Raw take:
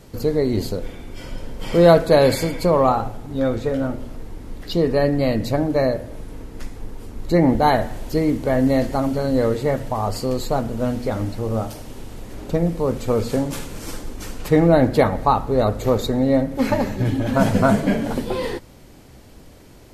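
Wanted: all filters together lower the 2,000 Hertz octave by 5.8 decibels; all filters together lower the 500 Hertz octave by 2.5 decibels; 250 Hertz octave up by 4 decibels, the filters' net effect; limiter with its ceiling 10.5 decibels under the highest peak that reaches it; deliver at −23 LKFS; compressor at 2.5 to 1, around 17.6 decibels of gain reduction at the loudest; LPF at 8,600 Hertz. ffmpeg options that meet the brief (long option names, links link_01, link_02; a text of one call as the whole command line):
ffmpeg -i in.wav -af "lowpass=8600,equalizer=frequency=250:width_type=o:gain=6,equalizer=frequency=500:width_type=o:gain=-4,equalizer=frequency=2000:width_type=o:gain=-7.5,acompressor=threshold=-37dB:ratio=2.5,volume=16.5dB,alimiter=limit=-13.5dB:level=0:latency=1" out.wav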